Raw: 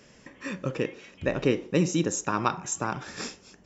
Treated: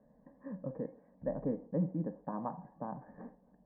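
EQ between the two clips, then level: steep low-pass 1.7 kHz 72 dB/octave; distance through air 410 m; static phaser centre 370 Hz, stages 6; -5.5 dB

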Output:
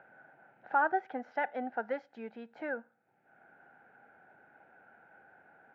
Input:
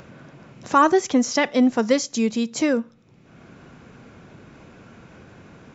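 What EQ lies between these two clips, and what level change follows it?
two resonant band-passes 1.1 kHz, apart 0.91 oct; distance through air 420 m; 0.0 dB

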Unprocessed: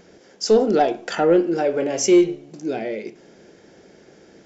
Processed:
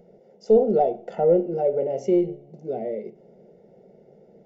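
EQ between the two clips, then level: Savitzky-Golay filter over 65 samples; static phaser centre 300 Hz, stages 6; 0.0 dB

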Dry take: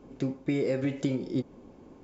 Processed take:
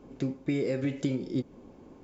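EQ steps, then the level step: dynamic bell 830 Hz, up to -4 dB, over -44 dBFS, Q 0.87; 0.0 dB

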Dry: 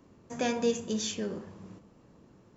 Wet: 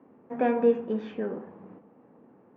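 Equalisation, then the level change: dynamic bell 1.4 kHz, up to +4 dB, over -47 dBFS, Q 1.5; cabinet simulation 190–2100 Hz, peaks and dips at 250 Hz +7 dB, 470 Hz +6 dB, 790 Hz +8 dB; 0.0 dB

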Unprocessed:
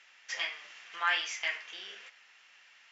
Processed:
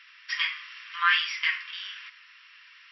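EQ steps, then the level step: brick-wall FIR band-pass 960–5700 Hz; +7.0 dB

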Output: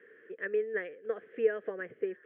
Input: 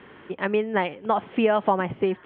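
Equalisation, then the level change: two resonant band-passes 890 Hz, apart 1.9 oct; distance through air 140 m; -2.0 dB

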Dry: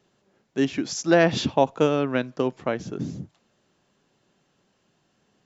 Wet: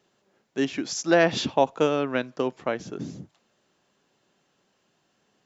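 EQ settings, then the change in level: bass shelf 200 Hz -9 dB; 0.0 dB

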